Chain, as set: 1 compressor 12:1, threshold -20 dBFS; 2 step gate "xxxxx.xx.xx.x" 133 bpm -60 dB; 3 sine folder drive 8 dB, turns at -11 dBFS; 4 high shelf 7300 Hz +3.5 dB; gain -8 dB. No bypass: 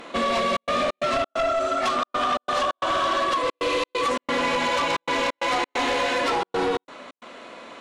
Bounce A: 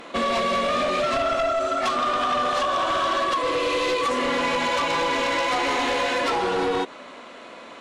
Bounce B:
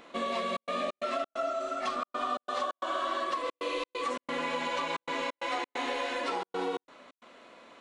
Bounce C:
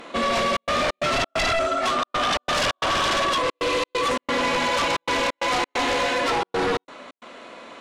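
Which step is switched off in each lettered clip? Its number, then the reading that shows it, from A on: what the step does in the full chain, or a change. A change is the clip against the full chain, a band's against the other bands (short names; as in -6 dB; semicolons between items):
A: 2, momentary loudness spread change -2 LU; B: 3, 125 Hz band -3.5 dB; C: 1, mean gain reduction 3.0 dB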